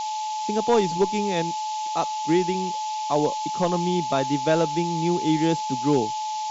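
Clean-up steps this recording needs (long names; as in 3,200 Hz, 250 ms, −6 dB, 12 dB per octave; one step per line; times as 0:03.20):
notch filter 860 Hz, Q 30
noise reduction from a noise print 30 dB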